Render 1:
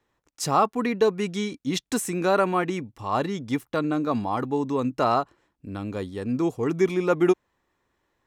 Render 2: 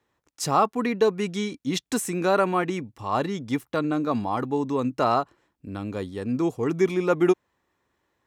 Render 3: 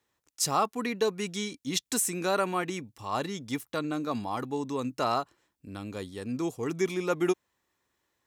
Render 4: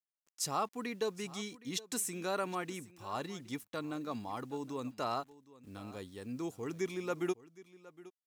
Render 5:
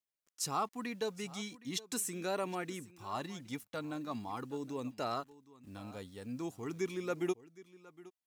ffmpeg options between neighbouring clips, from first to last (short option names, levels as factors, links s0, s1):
-af "highpass=52"
-af "highshelf=f=3100:g=12,volume=0.447"
-af "acrusher=bits=9:mix=0:aa=0.000001,aecho=1:1:766:0.112,volume=0.398"
-af "flanger=delay=0.3:depth=1.2:regen=-61:speed=0.41:shape=triangular,volume=1.5"